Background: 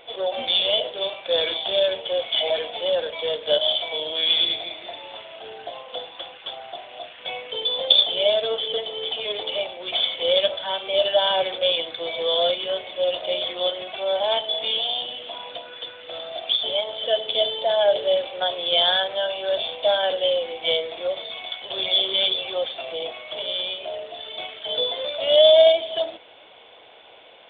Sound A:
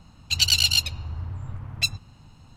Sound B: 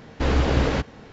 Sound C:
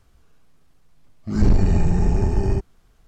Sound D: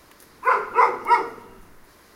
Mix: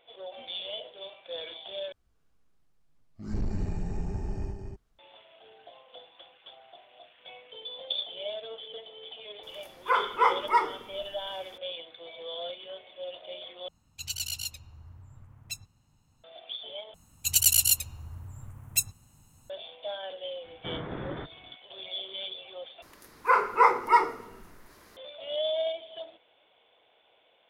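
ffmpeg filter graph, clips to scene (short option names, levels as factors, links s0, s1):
-filter_complex "[4:a]asplit=2[s0][s1];[1:a]asplit=2[s2][s3];[0:a]volume=0.15[s4];[3:a]aecho=1:1:236:0.562[s5];[s2]aexciter=amount=3.5:drive=4:freq=6200[s6];[s3]aexciter=amount=12.2:drive=3.5:freq=6800[s7];[2:a]highpass=f=200:t=q:w=0.5412,highpass=f=200:t=q:w=1.307,lowpass=f=2100:t=q:w=0.5176,lowpass=f=2100:t=q:w=0.7071,lowpass=f=2100:t=q:w=1.932,afreqshift=-140[s8];[s4]asplit=5[s9][s10][s11][s12][s13];[s9]atrim=end=1.924[s14];[s5]atrim=end=3.07,asetpts=PTS-STARTPTS,volume=0.168[s15];[s10]atrim=start=4.986:end=13.684[s16];[s6]atrim=end=2.56,asetpts=PTS-STARTPTS,volume=0.141[s17];[s11]atrim=start=16.236:end=16.944[s18];[s7]atrim=end=2.56,asetpts=PTS-STARTPTS,volume=0.316[s19];[s12]atrim=start=19.496:end=22.824[s20];[s1]atrim=end=2.15,asetpts=PTS-STARTPTS,volume=0.708[s21];[s13]atrim=start=24.966[s22];[s0]atrim=end=2.15,asetpts=PTS-STARTPTS,volume=0.501,afade=t=in:d=0.004:c=hsin,afade=t=out:st=2.146:d=0.004:c=hsin,adelay=9430[s23];[s8]atrim=end=1.12,asetpts=PTS-STARTPTS,volume=0.237,afade=t=in:d=0.004:c=hsin,afade=t=out:st=1.116:d=0.004:c=hsin,adelay=20440[s24];[s14][s15]acrossfade=d=0.004:c1=hsin:c2=hsin[s25];[s25][s16]acrossfade=d=0.004:c1=hsin:c2=hsin[s26];[s26][s17]acrossfade=d=0.004:c1=hsin:c2=hsin[s27];[s27][s18]acrossfade=d=0.004:c1=hsin:c2=hsin[s28];[s28][s19]acrossfade=d=0.004:c1=hsin:c2=hsin[s29];[s29][s20]acrossfade=d=0.004:c1=hsin:c2=hsin[s30];[s30][s21]acrossfade=d=0.004:c1=hsin:c2=hsin[s31];[s31][s22]acrossfade=d=0.004:c1=hsin:c2=hsin[s32];[s32][s23][s24]amix=inputs=3:normalize=0"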